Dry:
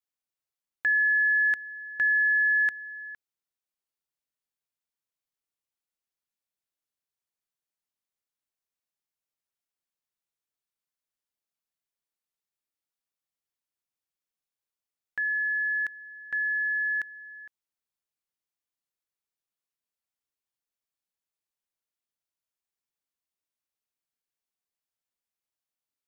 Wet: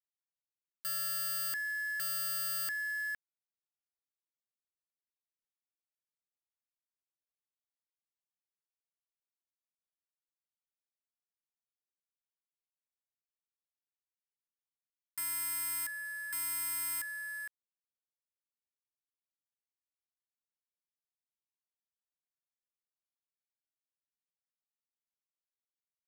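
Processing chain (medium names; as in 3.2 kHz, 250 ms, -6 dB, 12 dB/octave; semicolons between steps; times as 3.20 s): word length cut 8-bit, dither none; integer overflow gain 32 dB; trim +2.5 dB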